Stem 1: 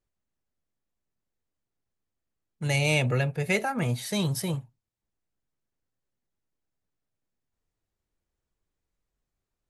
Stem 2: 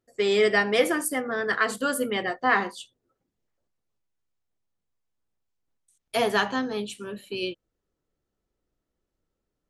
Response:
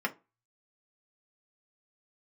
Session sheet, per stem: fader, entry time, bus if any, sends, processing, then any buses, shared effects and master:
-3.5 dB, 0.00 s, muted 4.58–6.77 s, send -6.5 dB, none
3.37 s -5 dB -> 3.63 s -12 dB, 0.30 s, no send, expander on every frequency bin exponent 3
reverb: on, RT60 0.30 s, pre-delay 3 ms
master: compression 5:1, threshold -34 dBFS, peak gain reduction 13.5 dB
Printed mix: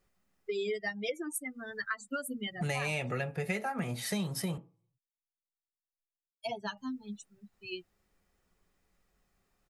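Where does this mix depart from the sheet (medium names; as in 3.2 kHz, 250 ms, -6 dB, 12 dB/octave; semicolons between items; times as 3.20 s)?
stem 1 -3.5 dB -> +7.0 dB; stem 2 -5.0 dB -> +5.0 dB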